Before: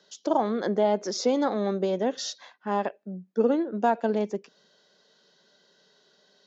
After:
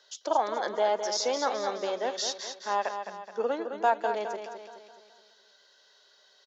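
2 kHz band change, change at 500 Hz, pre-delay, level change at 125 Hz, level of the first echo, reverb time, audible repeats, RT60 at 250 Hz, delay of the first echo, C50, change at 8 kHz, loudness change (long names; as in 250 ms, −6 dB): +2.5 dB, −3.5 dB, no reverb audible, can't be measured, −8.0 dB, no reverb audible, 5, no reverb audible, 212 ms, no reverb audible, can't be measured, −3.0 dB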